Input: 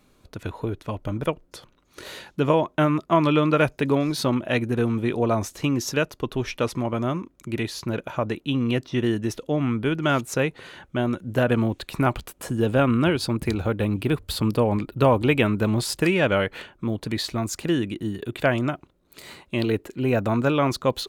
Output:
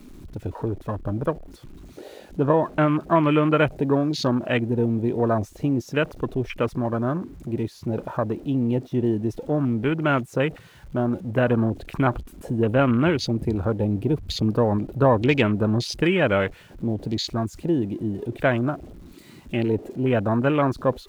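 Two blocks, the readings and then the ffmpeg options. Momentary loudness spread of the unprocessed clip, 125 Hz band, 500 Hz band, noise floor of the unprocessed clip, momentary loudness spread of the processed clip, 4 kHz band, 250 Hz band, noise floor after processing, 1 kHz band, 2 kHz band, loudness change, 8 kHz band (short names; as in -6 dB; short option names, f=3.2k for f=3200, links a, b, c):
11 LU, +1.0 dB, +0.5 dB, -61 dBFS, 10 LU, -2.5 dB, +1.0 dB, -48 dBFS, 0.0 dB, -1.0 dB, +0.5 dB, -7.5 dB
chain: -af "aeval=exprs='val(0)+0.5*0.0211*sgn(val(0))':c=same,afwtdn=0.0316"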